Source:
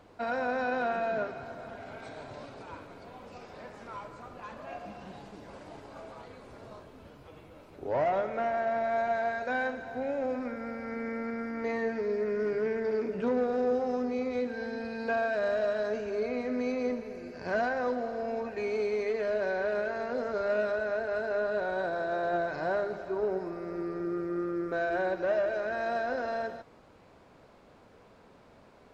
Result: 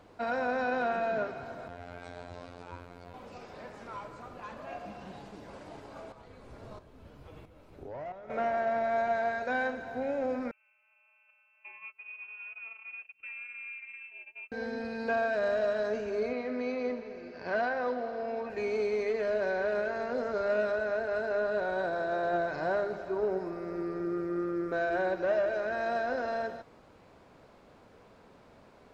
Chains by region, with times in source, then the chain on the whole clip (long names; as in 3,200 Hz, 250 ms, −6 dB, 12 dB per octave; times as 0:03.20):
0:01.68–0:03.14: parametric band 93 Hz +8.5 dB 0.71 octaves + phases set to zero 87.6 Hz
0:06.12–0:08.30: low-shelf EQ 98 Hz +11 dB + downward compressor, threshold −37 dBFS + shaped tremolo saw up 1.5 Hz, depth 65%
0:10.51–0:14.52: noise gate −31 dBFS, range −32 dB + downward compressor 2 to 1, threshold −53 dBFS + voice inversion scrambler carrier 2,900 Hz
0:16.33–0:18.50: low-pass filter 5,000 Hz 24 dB per octave + low-shelf EQ 210 Hz −9 dB
whole clip: no processing